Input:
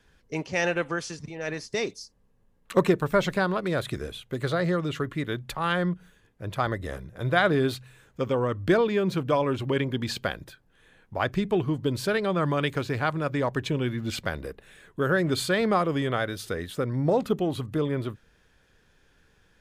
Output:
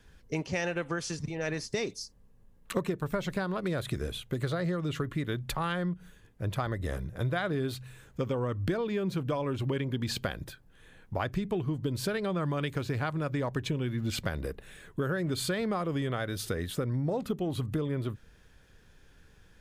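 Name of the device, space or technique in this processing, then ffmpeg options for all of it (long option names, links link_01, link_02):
ASMR close-microphone chain: -af "lowshelf=frequency=200:gain=7,acompressor=threshold=-28dB:ratio=6,highshelf=frequency=6600:gain=4.5"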